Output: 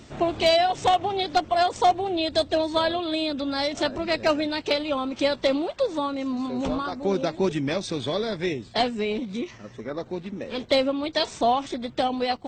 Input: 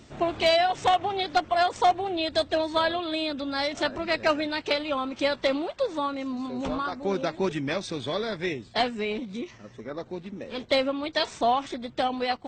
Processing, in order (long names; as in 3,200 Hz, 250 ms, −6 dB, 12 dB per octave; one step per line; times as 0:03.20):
dynamic equaliser 1,600 Hz, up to −6 dB, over −39 dBFS, Q 0.73
level +4 dB